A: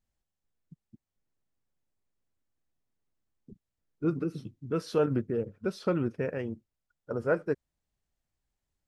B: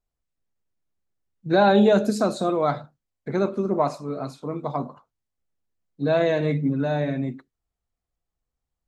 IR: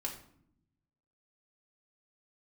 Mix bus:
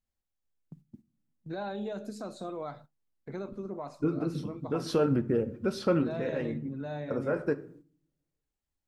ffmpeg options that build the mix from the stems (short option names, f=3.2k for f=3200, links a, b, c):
-filter_complex "[0:a]alimiter=limit=-22.5dB:level=0:latency=1:release=124,volume=2.5dB,asplit=2[a][b];[b]volume=-5.5dB[c];[1:a]alimiter=limit=-17dB:level=0:latency=1:release=320,volume=-11.5dB,asplit=2[d][e];[e]apad=whole_len=391192[f];[a][f]sidechaincompress=threshold=-47dB:ratio=8:attack=28:release=111[g];[2:a]atrim=start_sample=2205[h];[c][h]afir=irnorm=-1:irlink=0[i];[g][d][i]amix=inputs=3:normalize=0,agate=range=-11dB:threshold=-52dB:ratio=16:detection=peak"